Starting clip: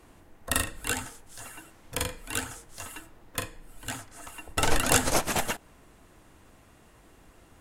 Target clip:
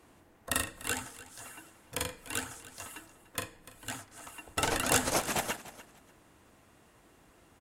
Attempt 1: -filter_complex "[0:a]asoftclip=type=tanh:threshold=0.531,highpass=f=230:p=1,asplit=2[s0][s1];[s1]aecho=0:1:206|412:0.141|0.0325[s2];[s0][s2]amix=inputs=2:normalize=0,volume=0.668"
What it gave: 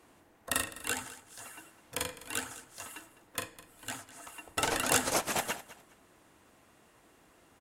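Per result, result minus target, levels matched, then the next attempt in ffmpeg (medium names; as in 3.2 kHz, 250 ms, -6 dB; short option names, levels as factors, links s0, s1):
echo 88 ms early; 125 Hz band -4.5 dB
-filter_complex "[0:a]asoftclip=type=tanh:threshold=0.531,highpass=f=230:p=1,asplit=2[s0][s1];[s1]aecho=0:1:294|588:0.141|0.0325[s2];[s0][s2]amix=inputs=2:normalize=0,volume=0.668"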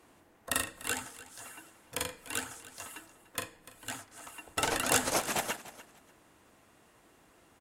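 125 Hz band -4.5 dB
-filter_complex "[0:a]asoftclip=type=tanh:threshold=0.531,highpass=f=100:p=1,asplit=2[s0][s1];[s1]aecho=0:1:294|588:0.141|0.0325[s2];[s0][s2]amix=inputs=2:normalize=0,volume=0.668"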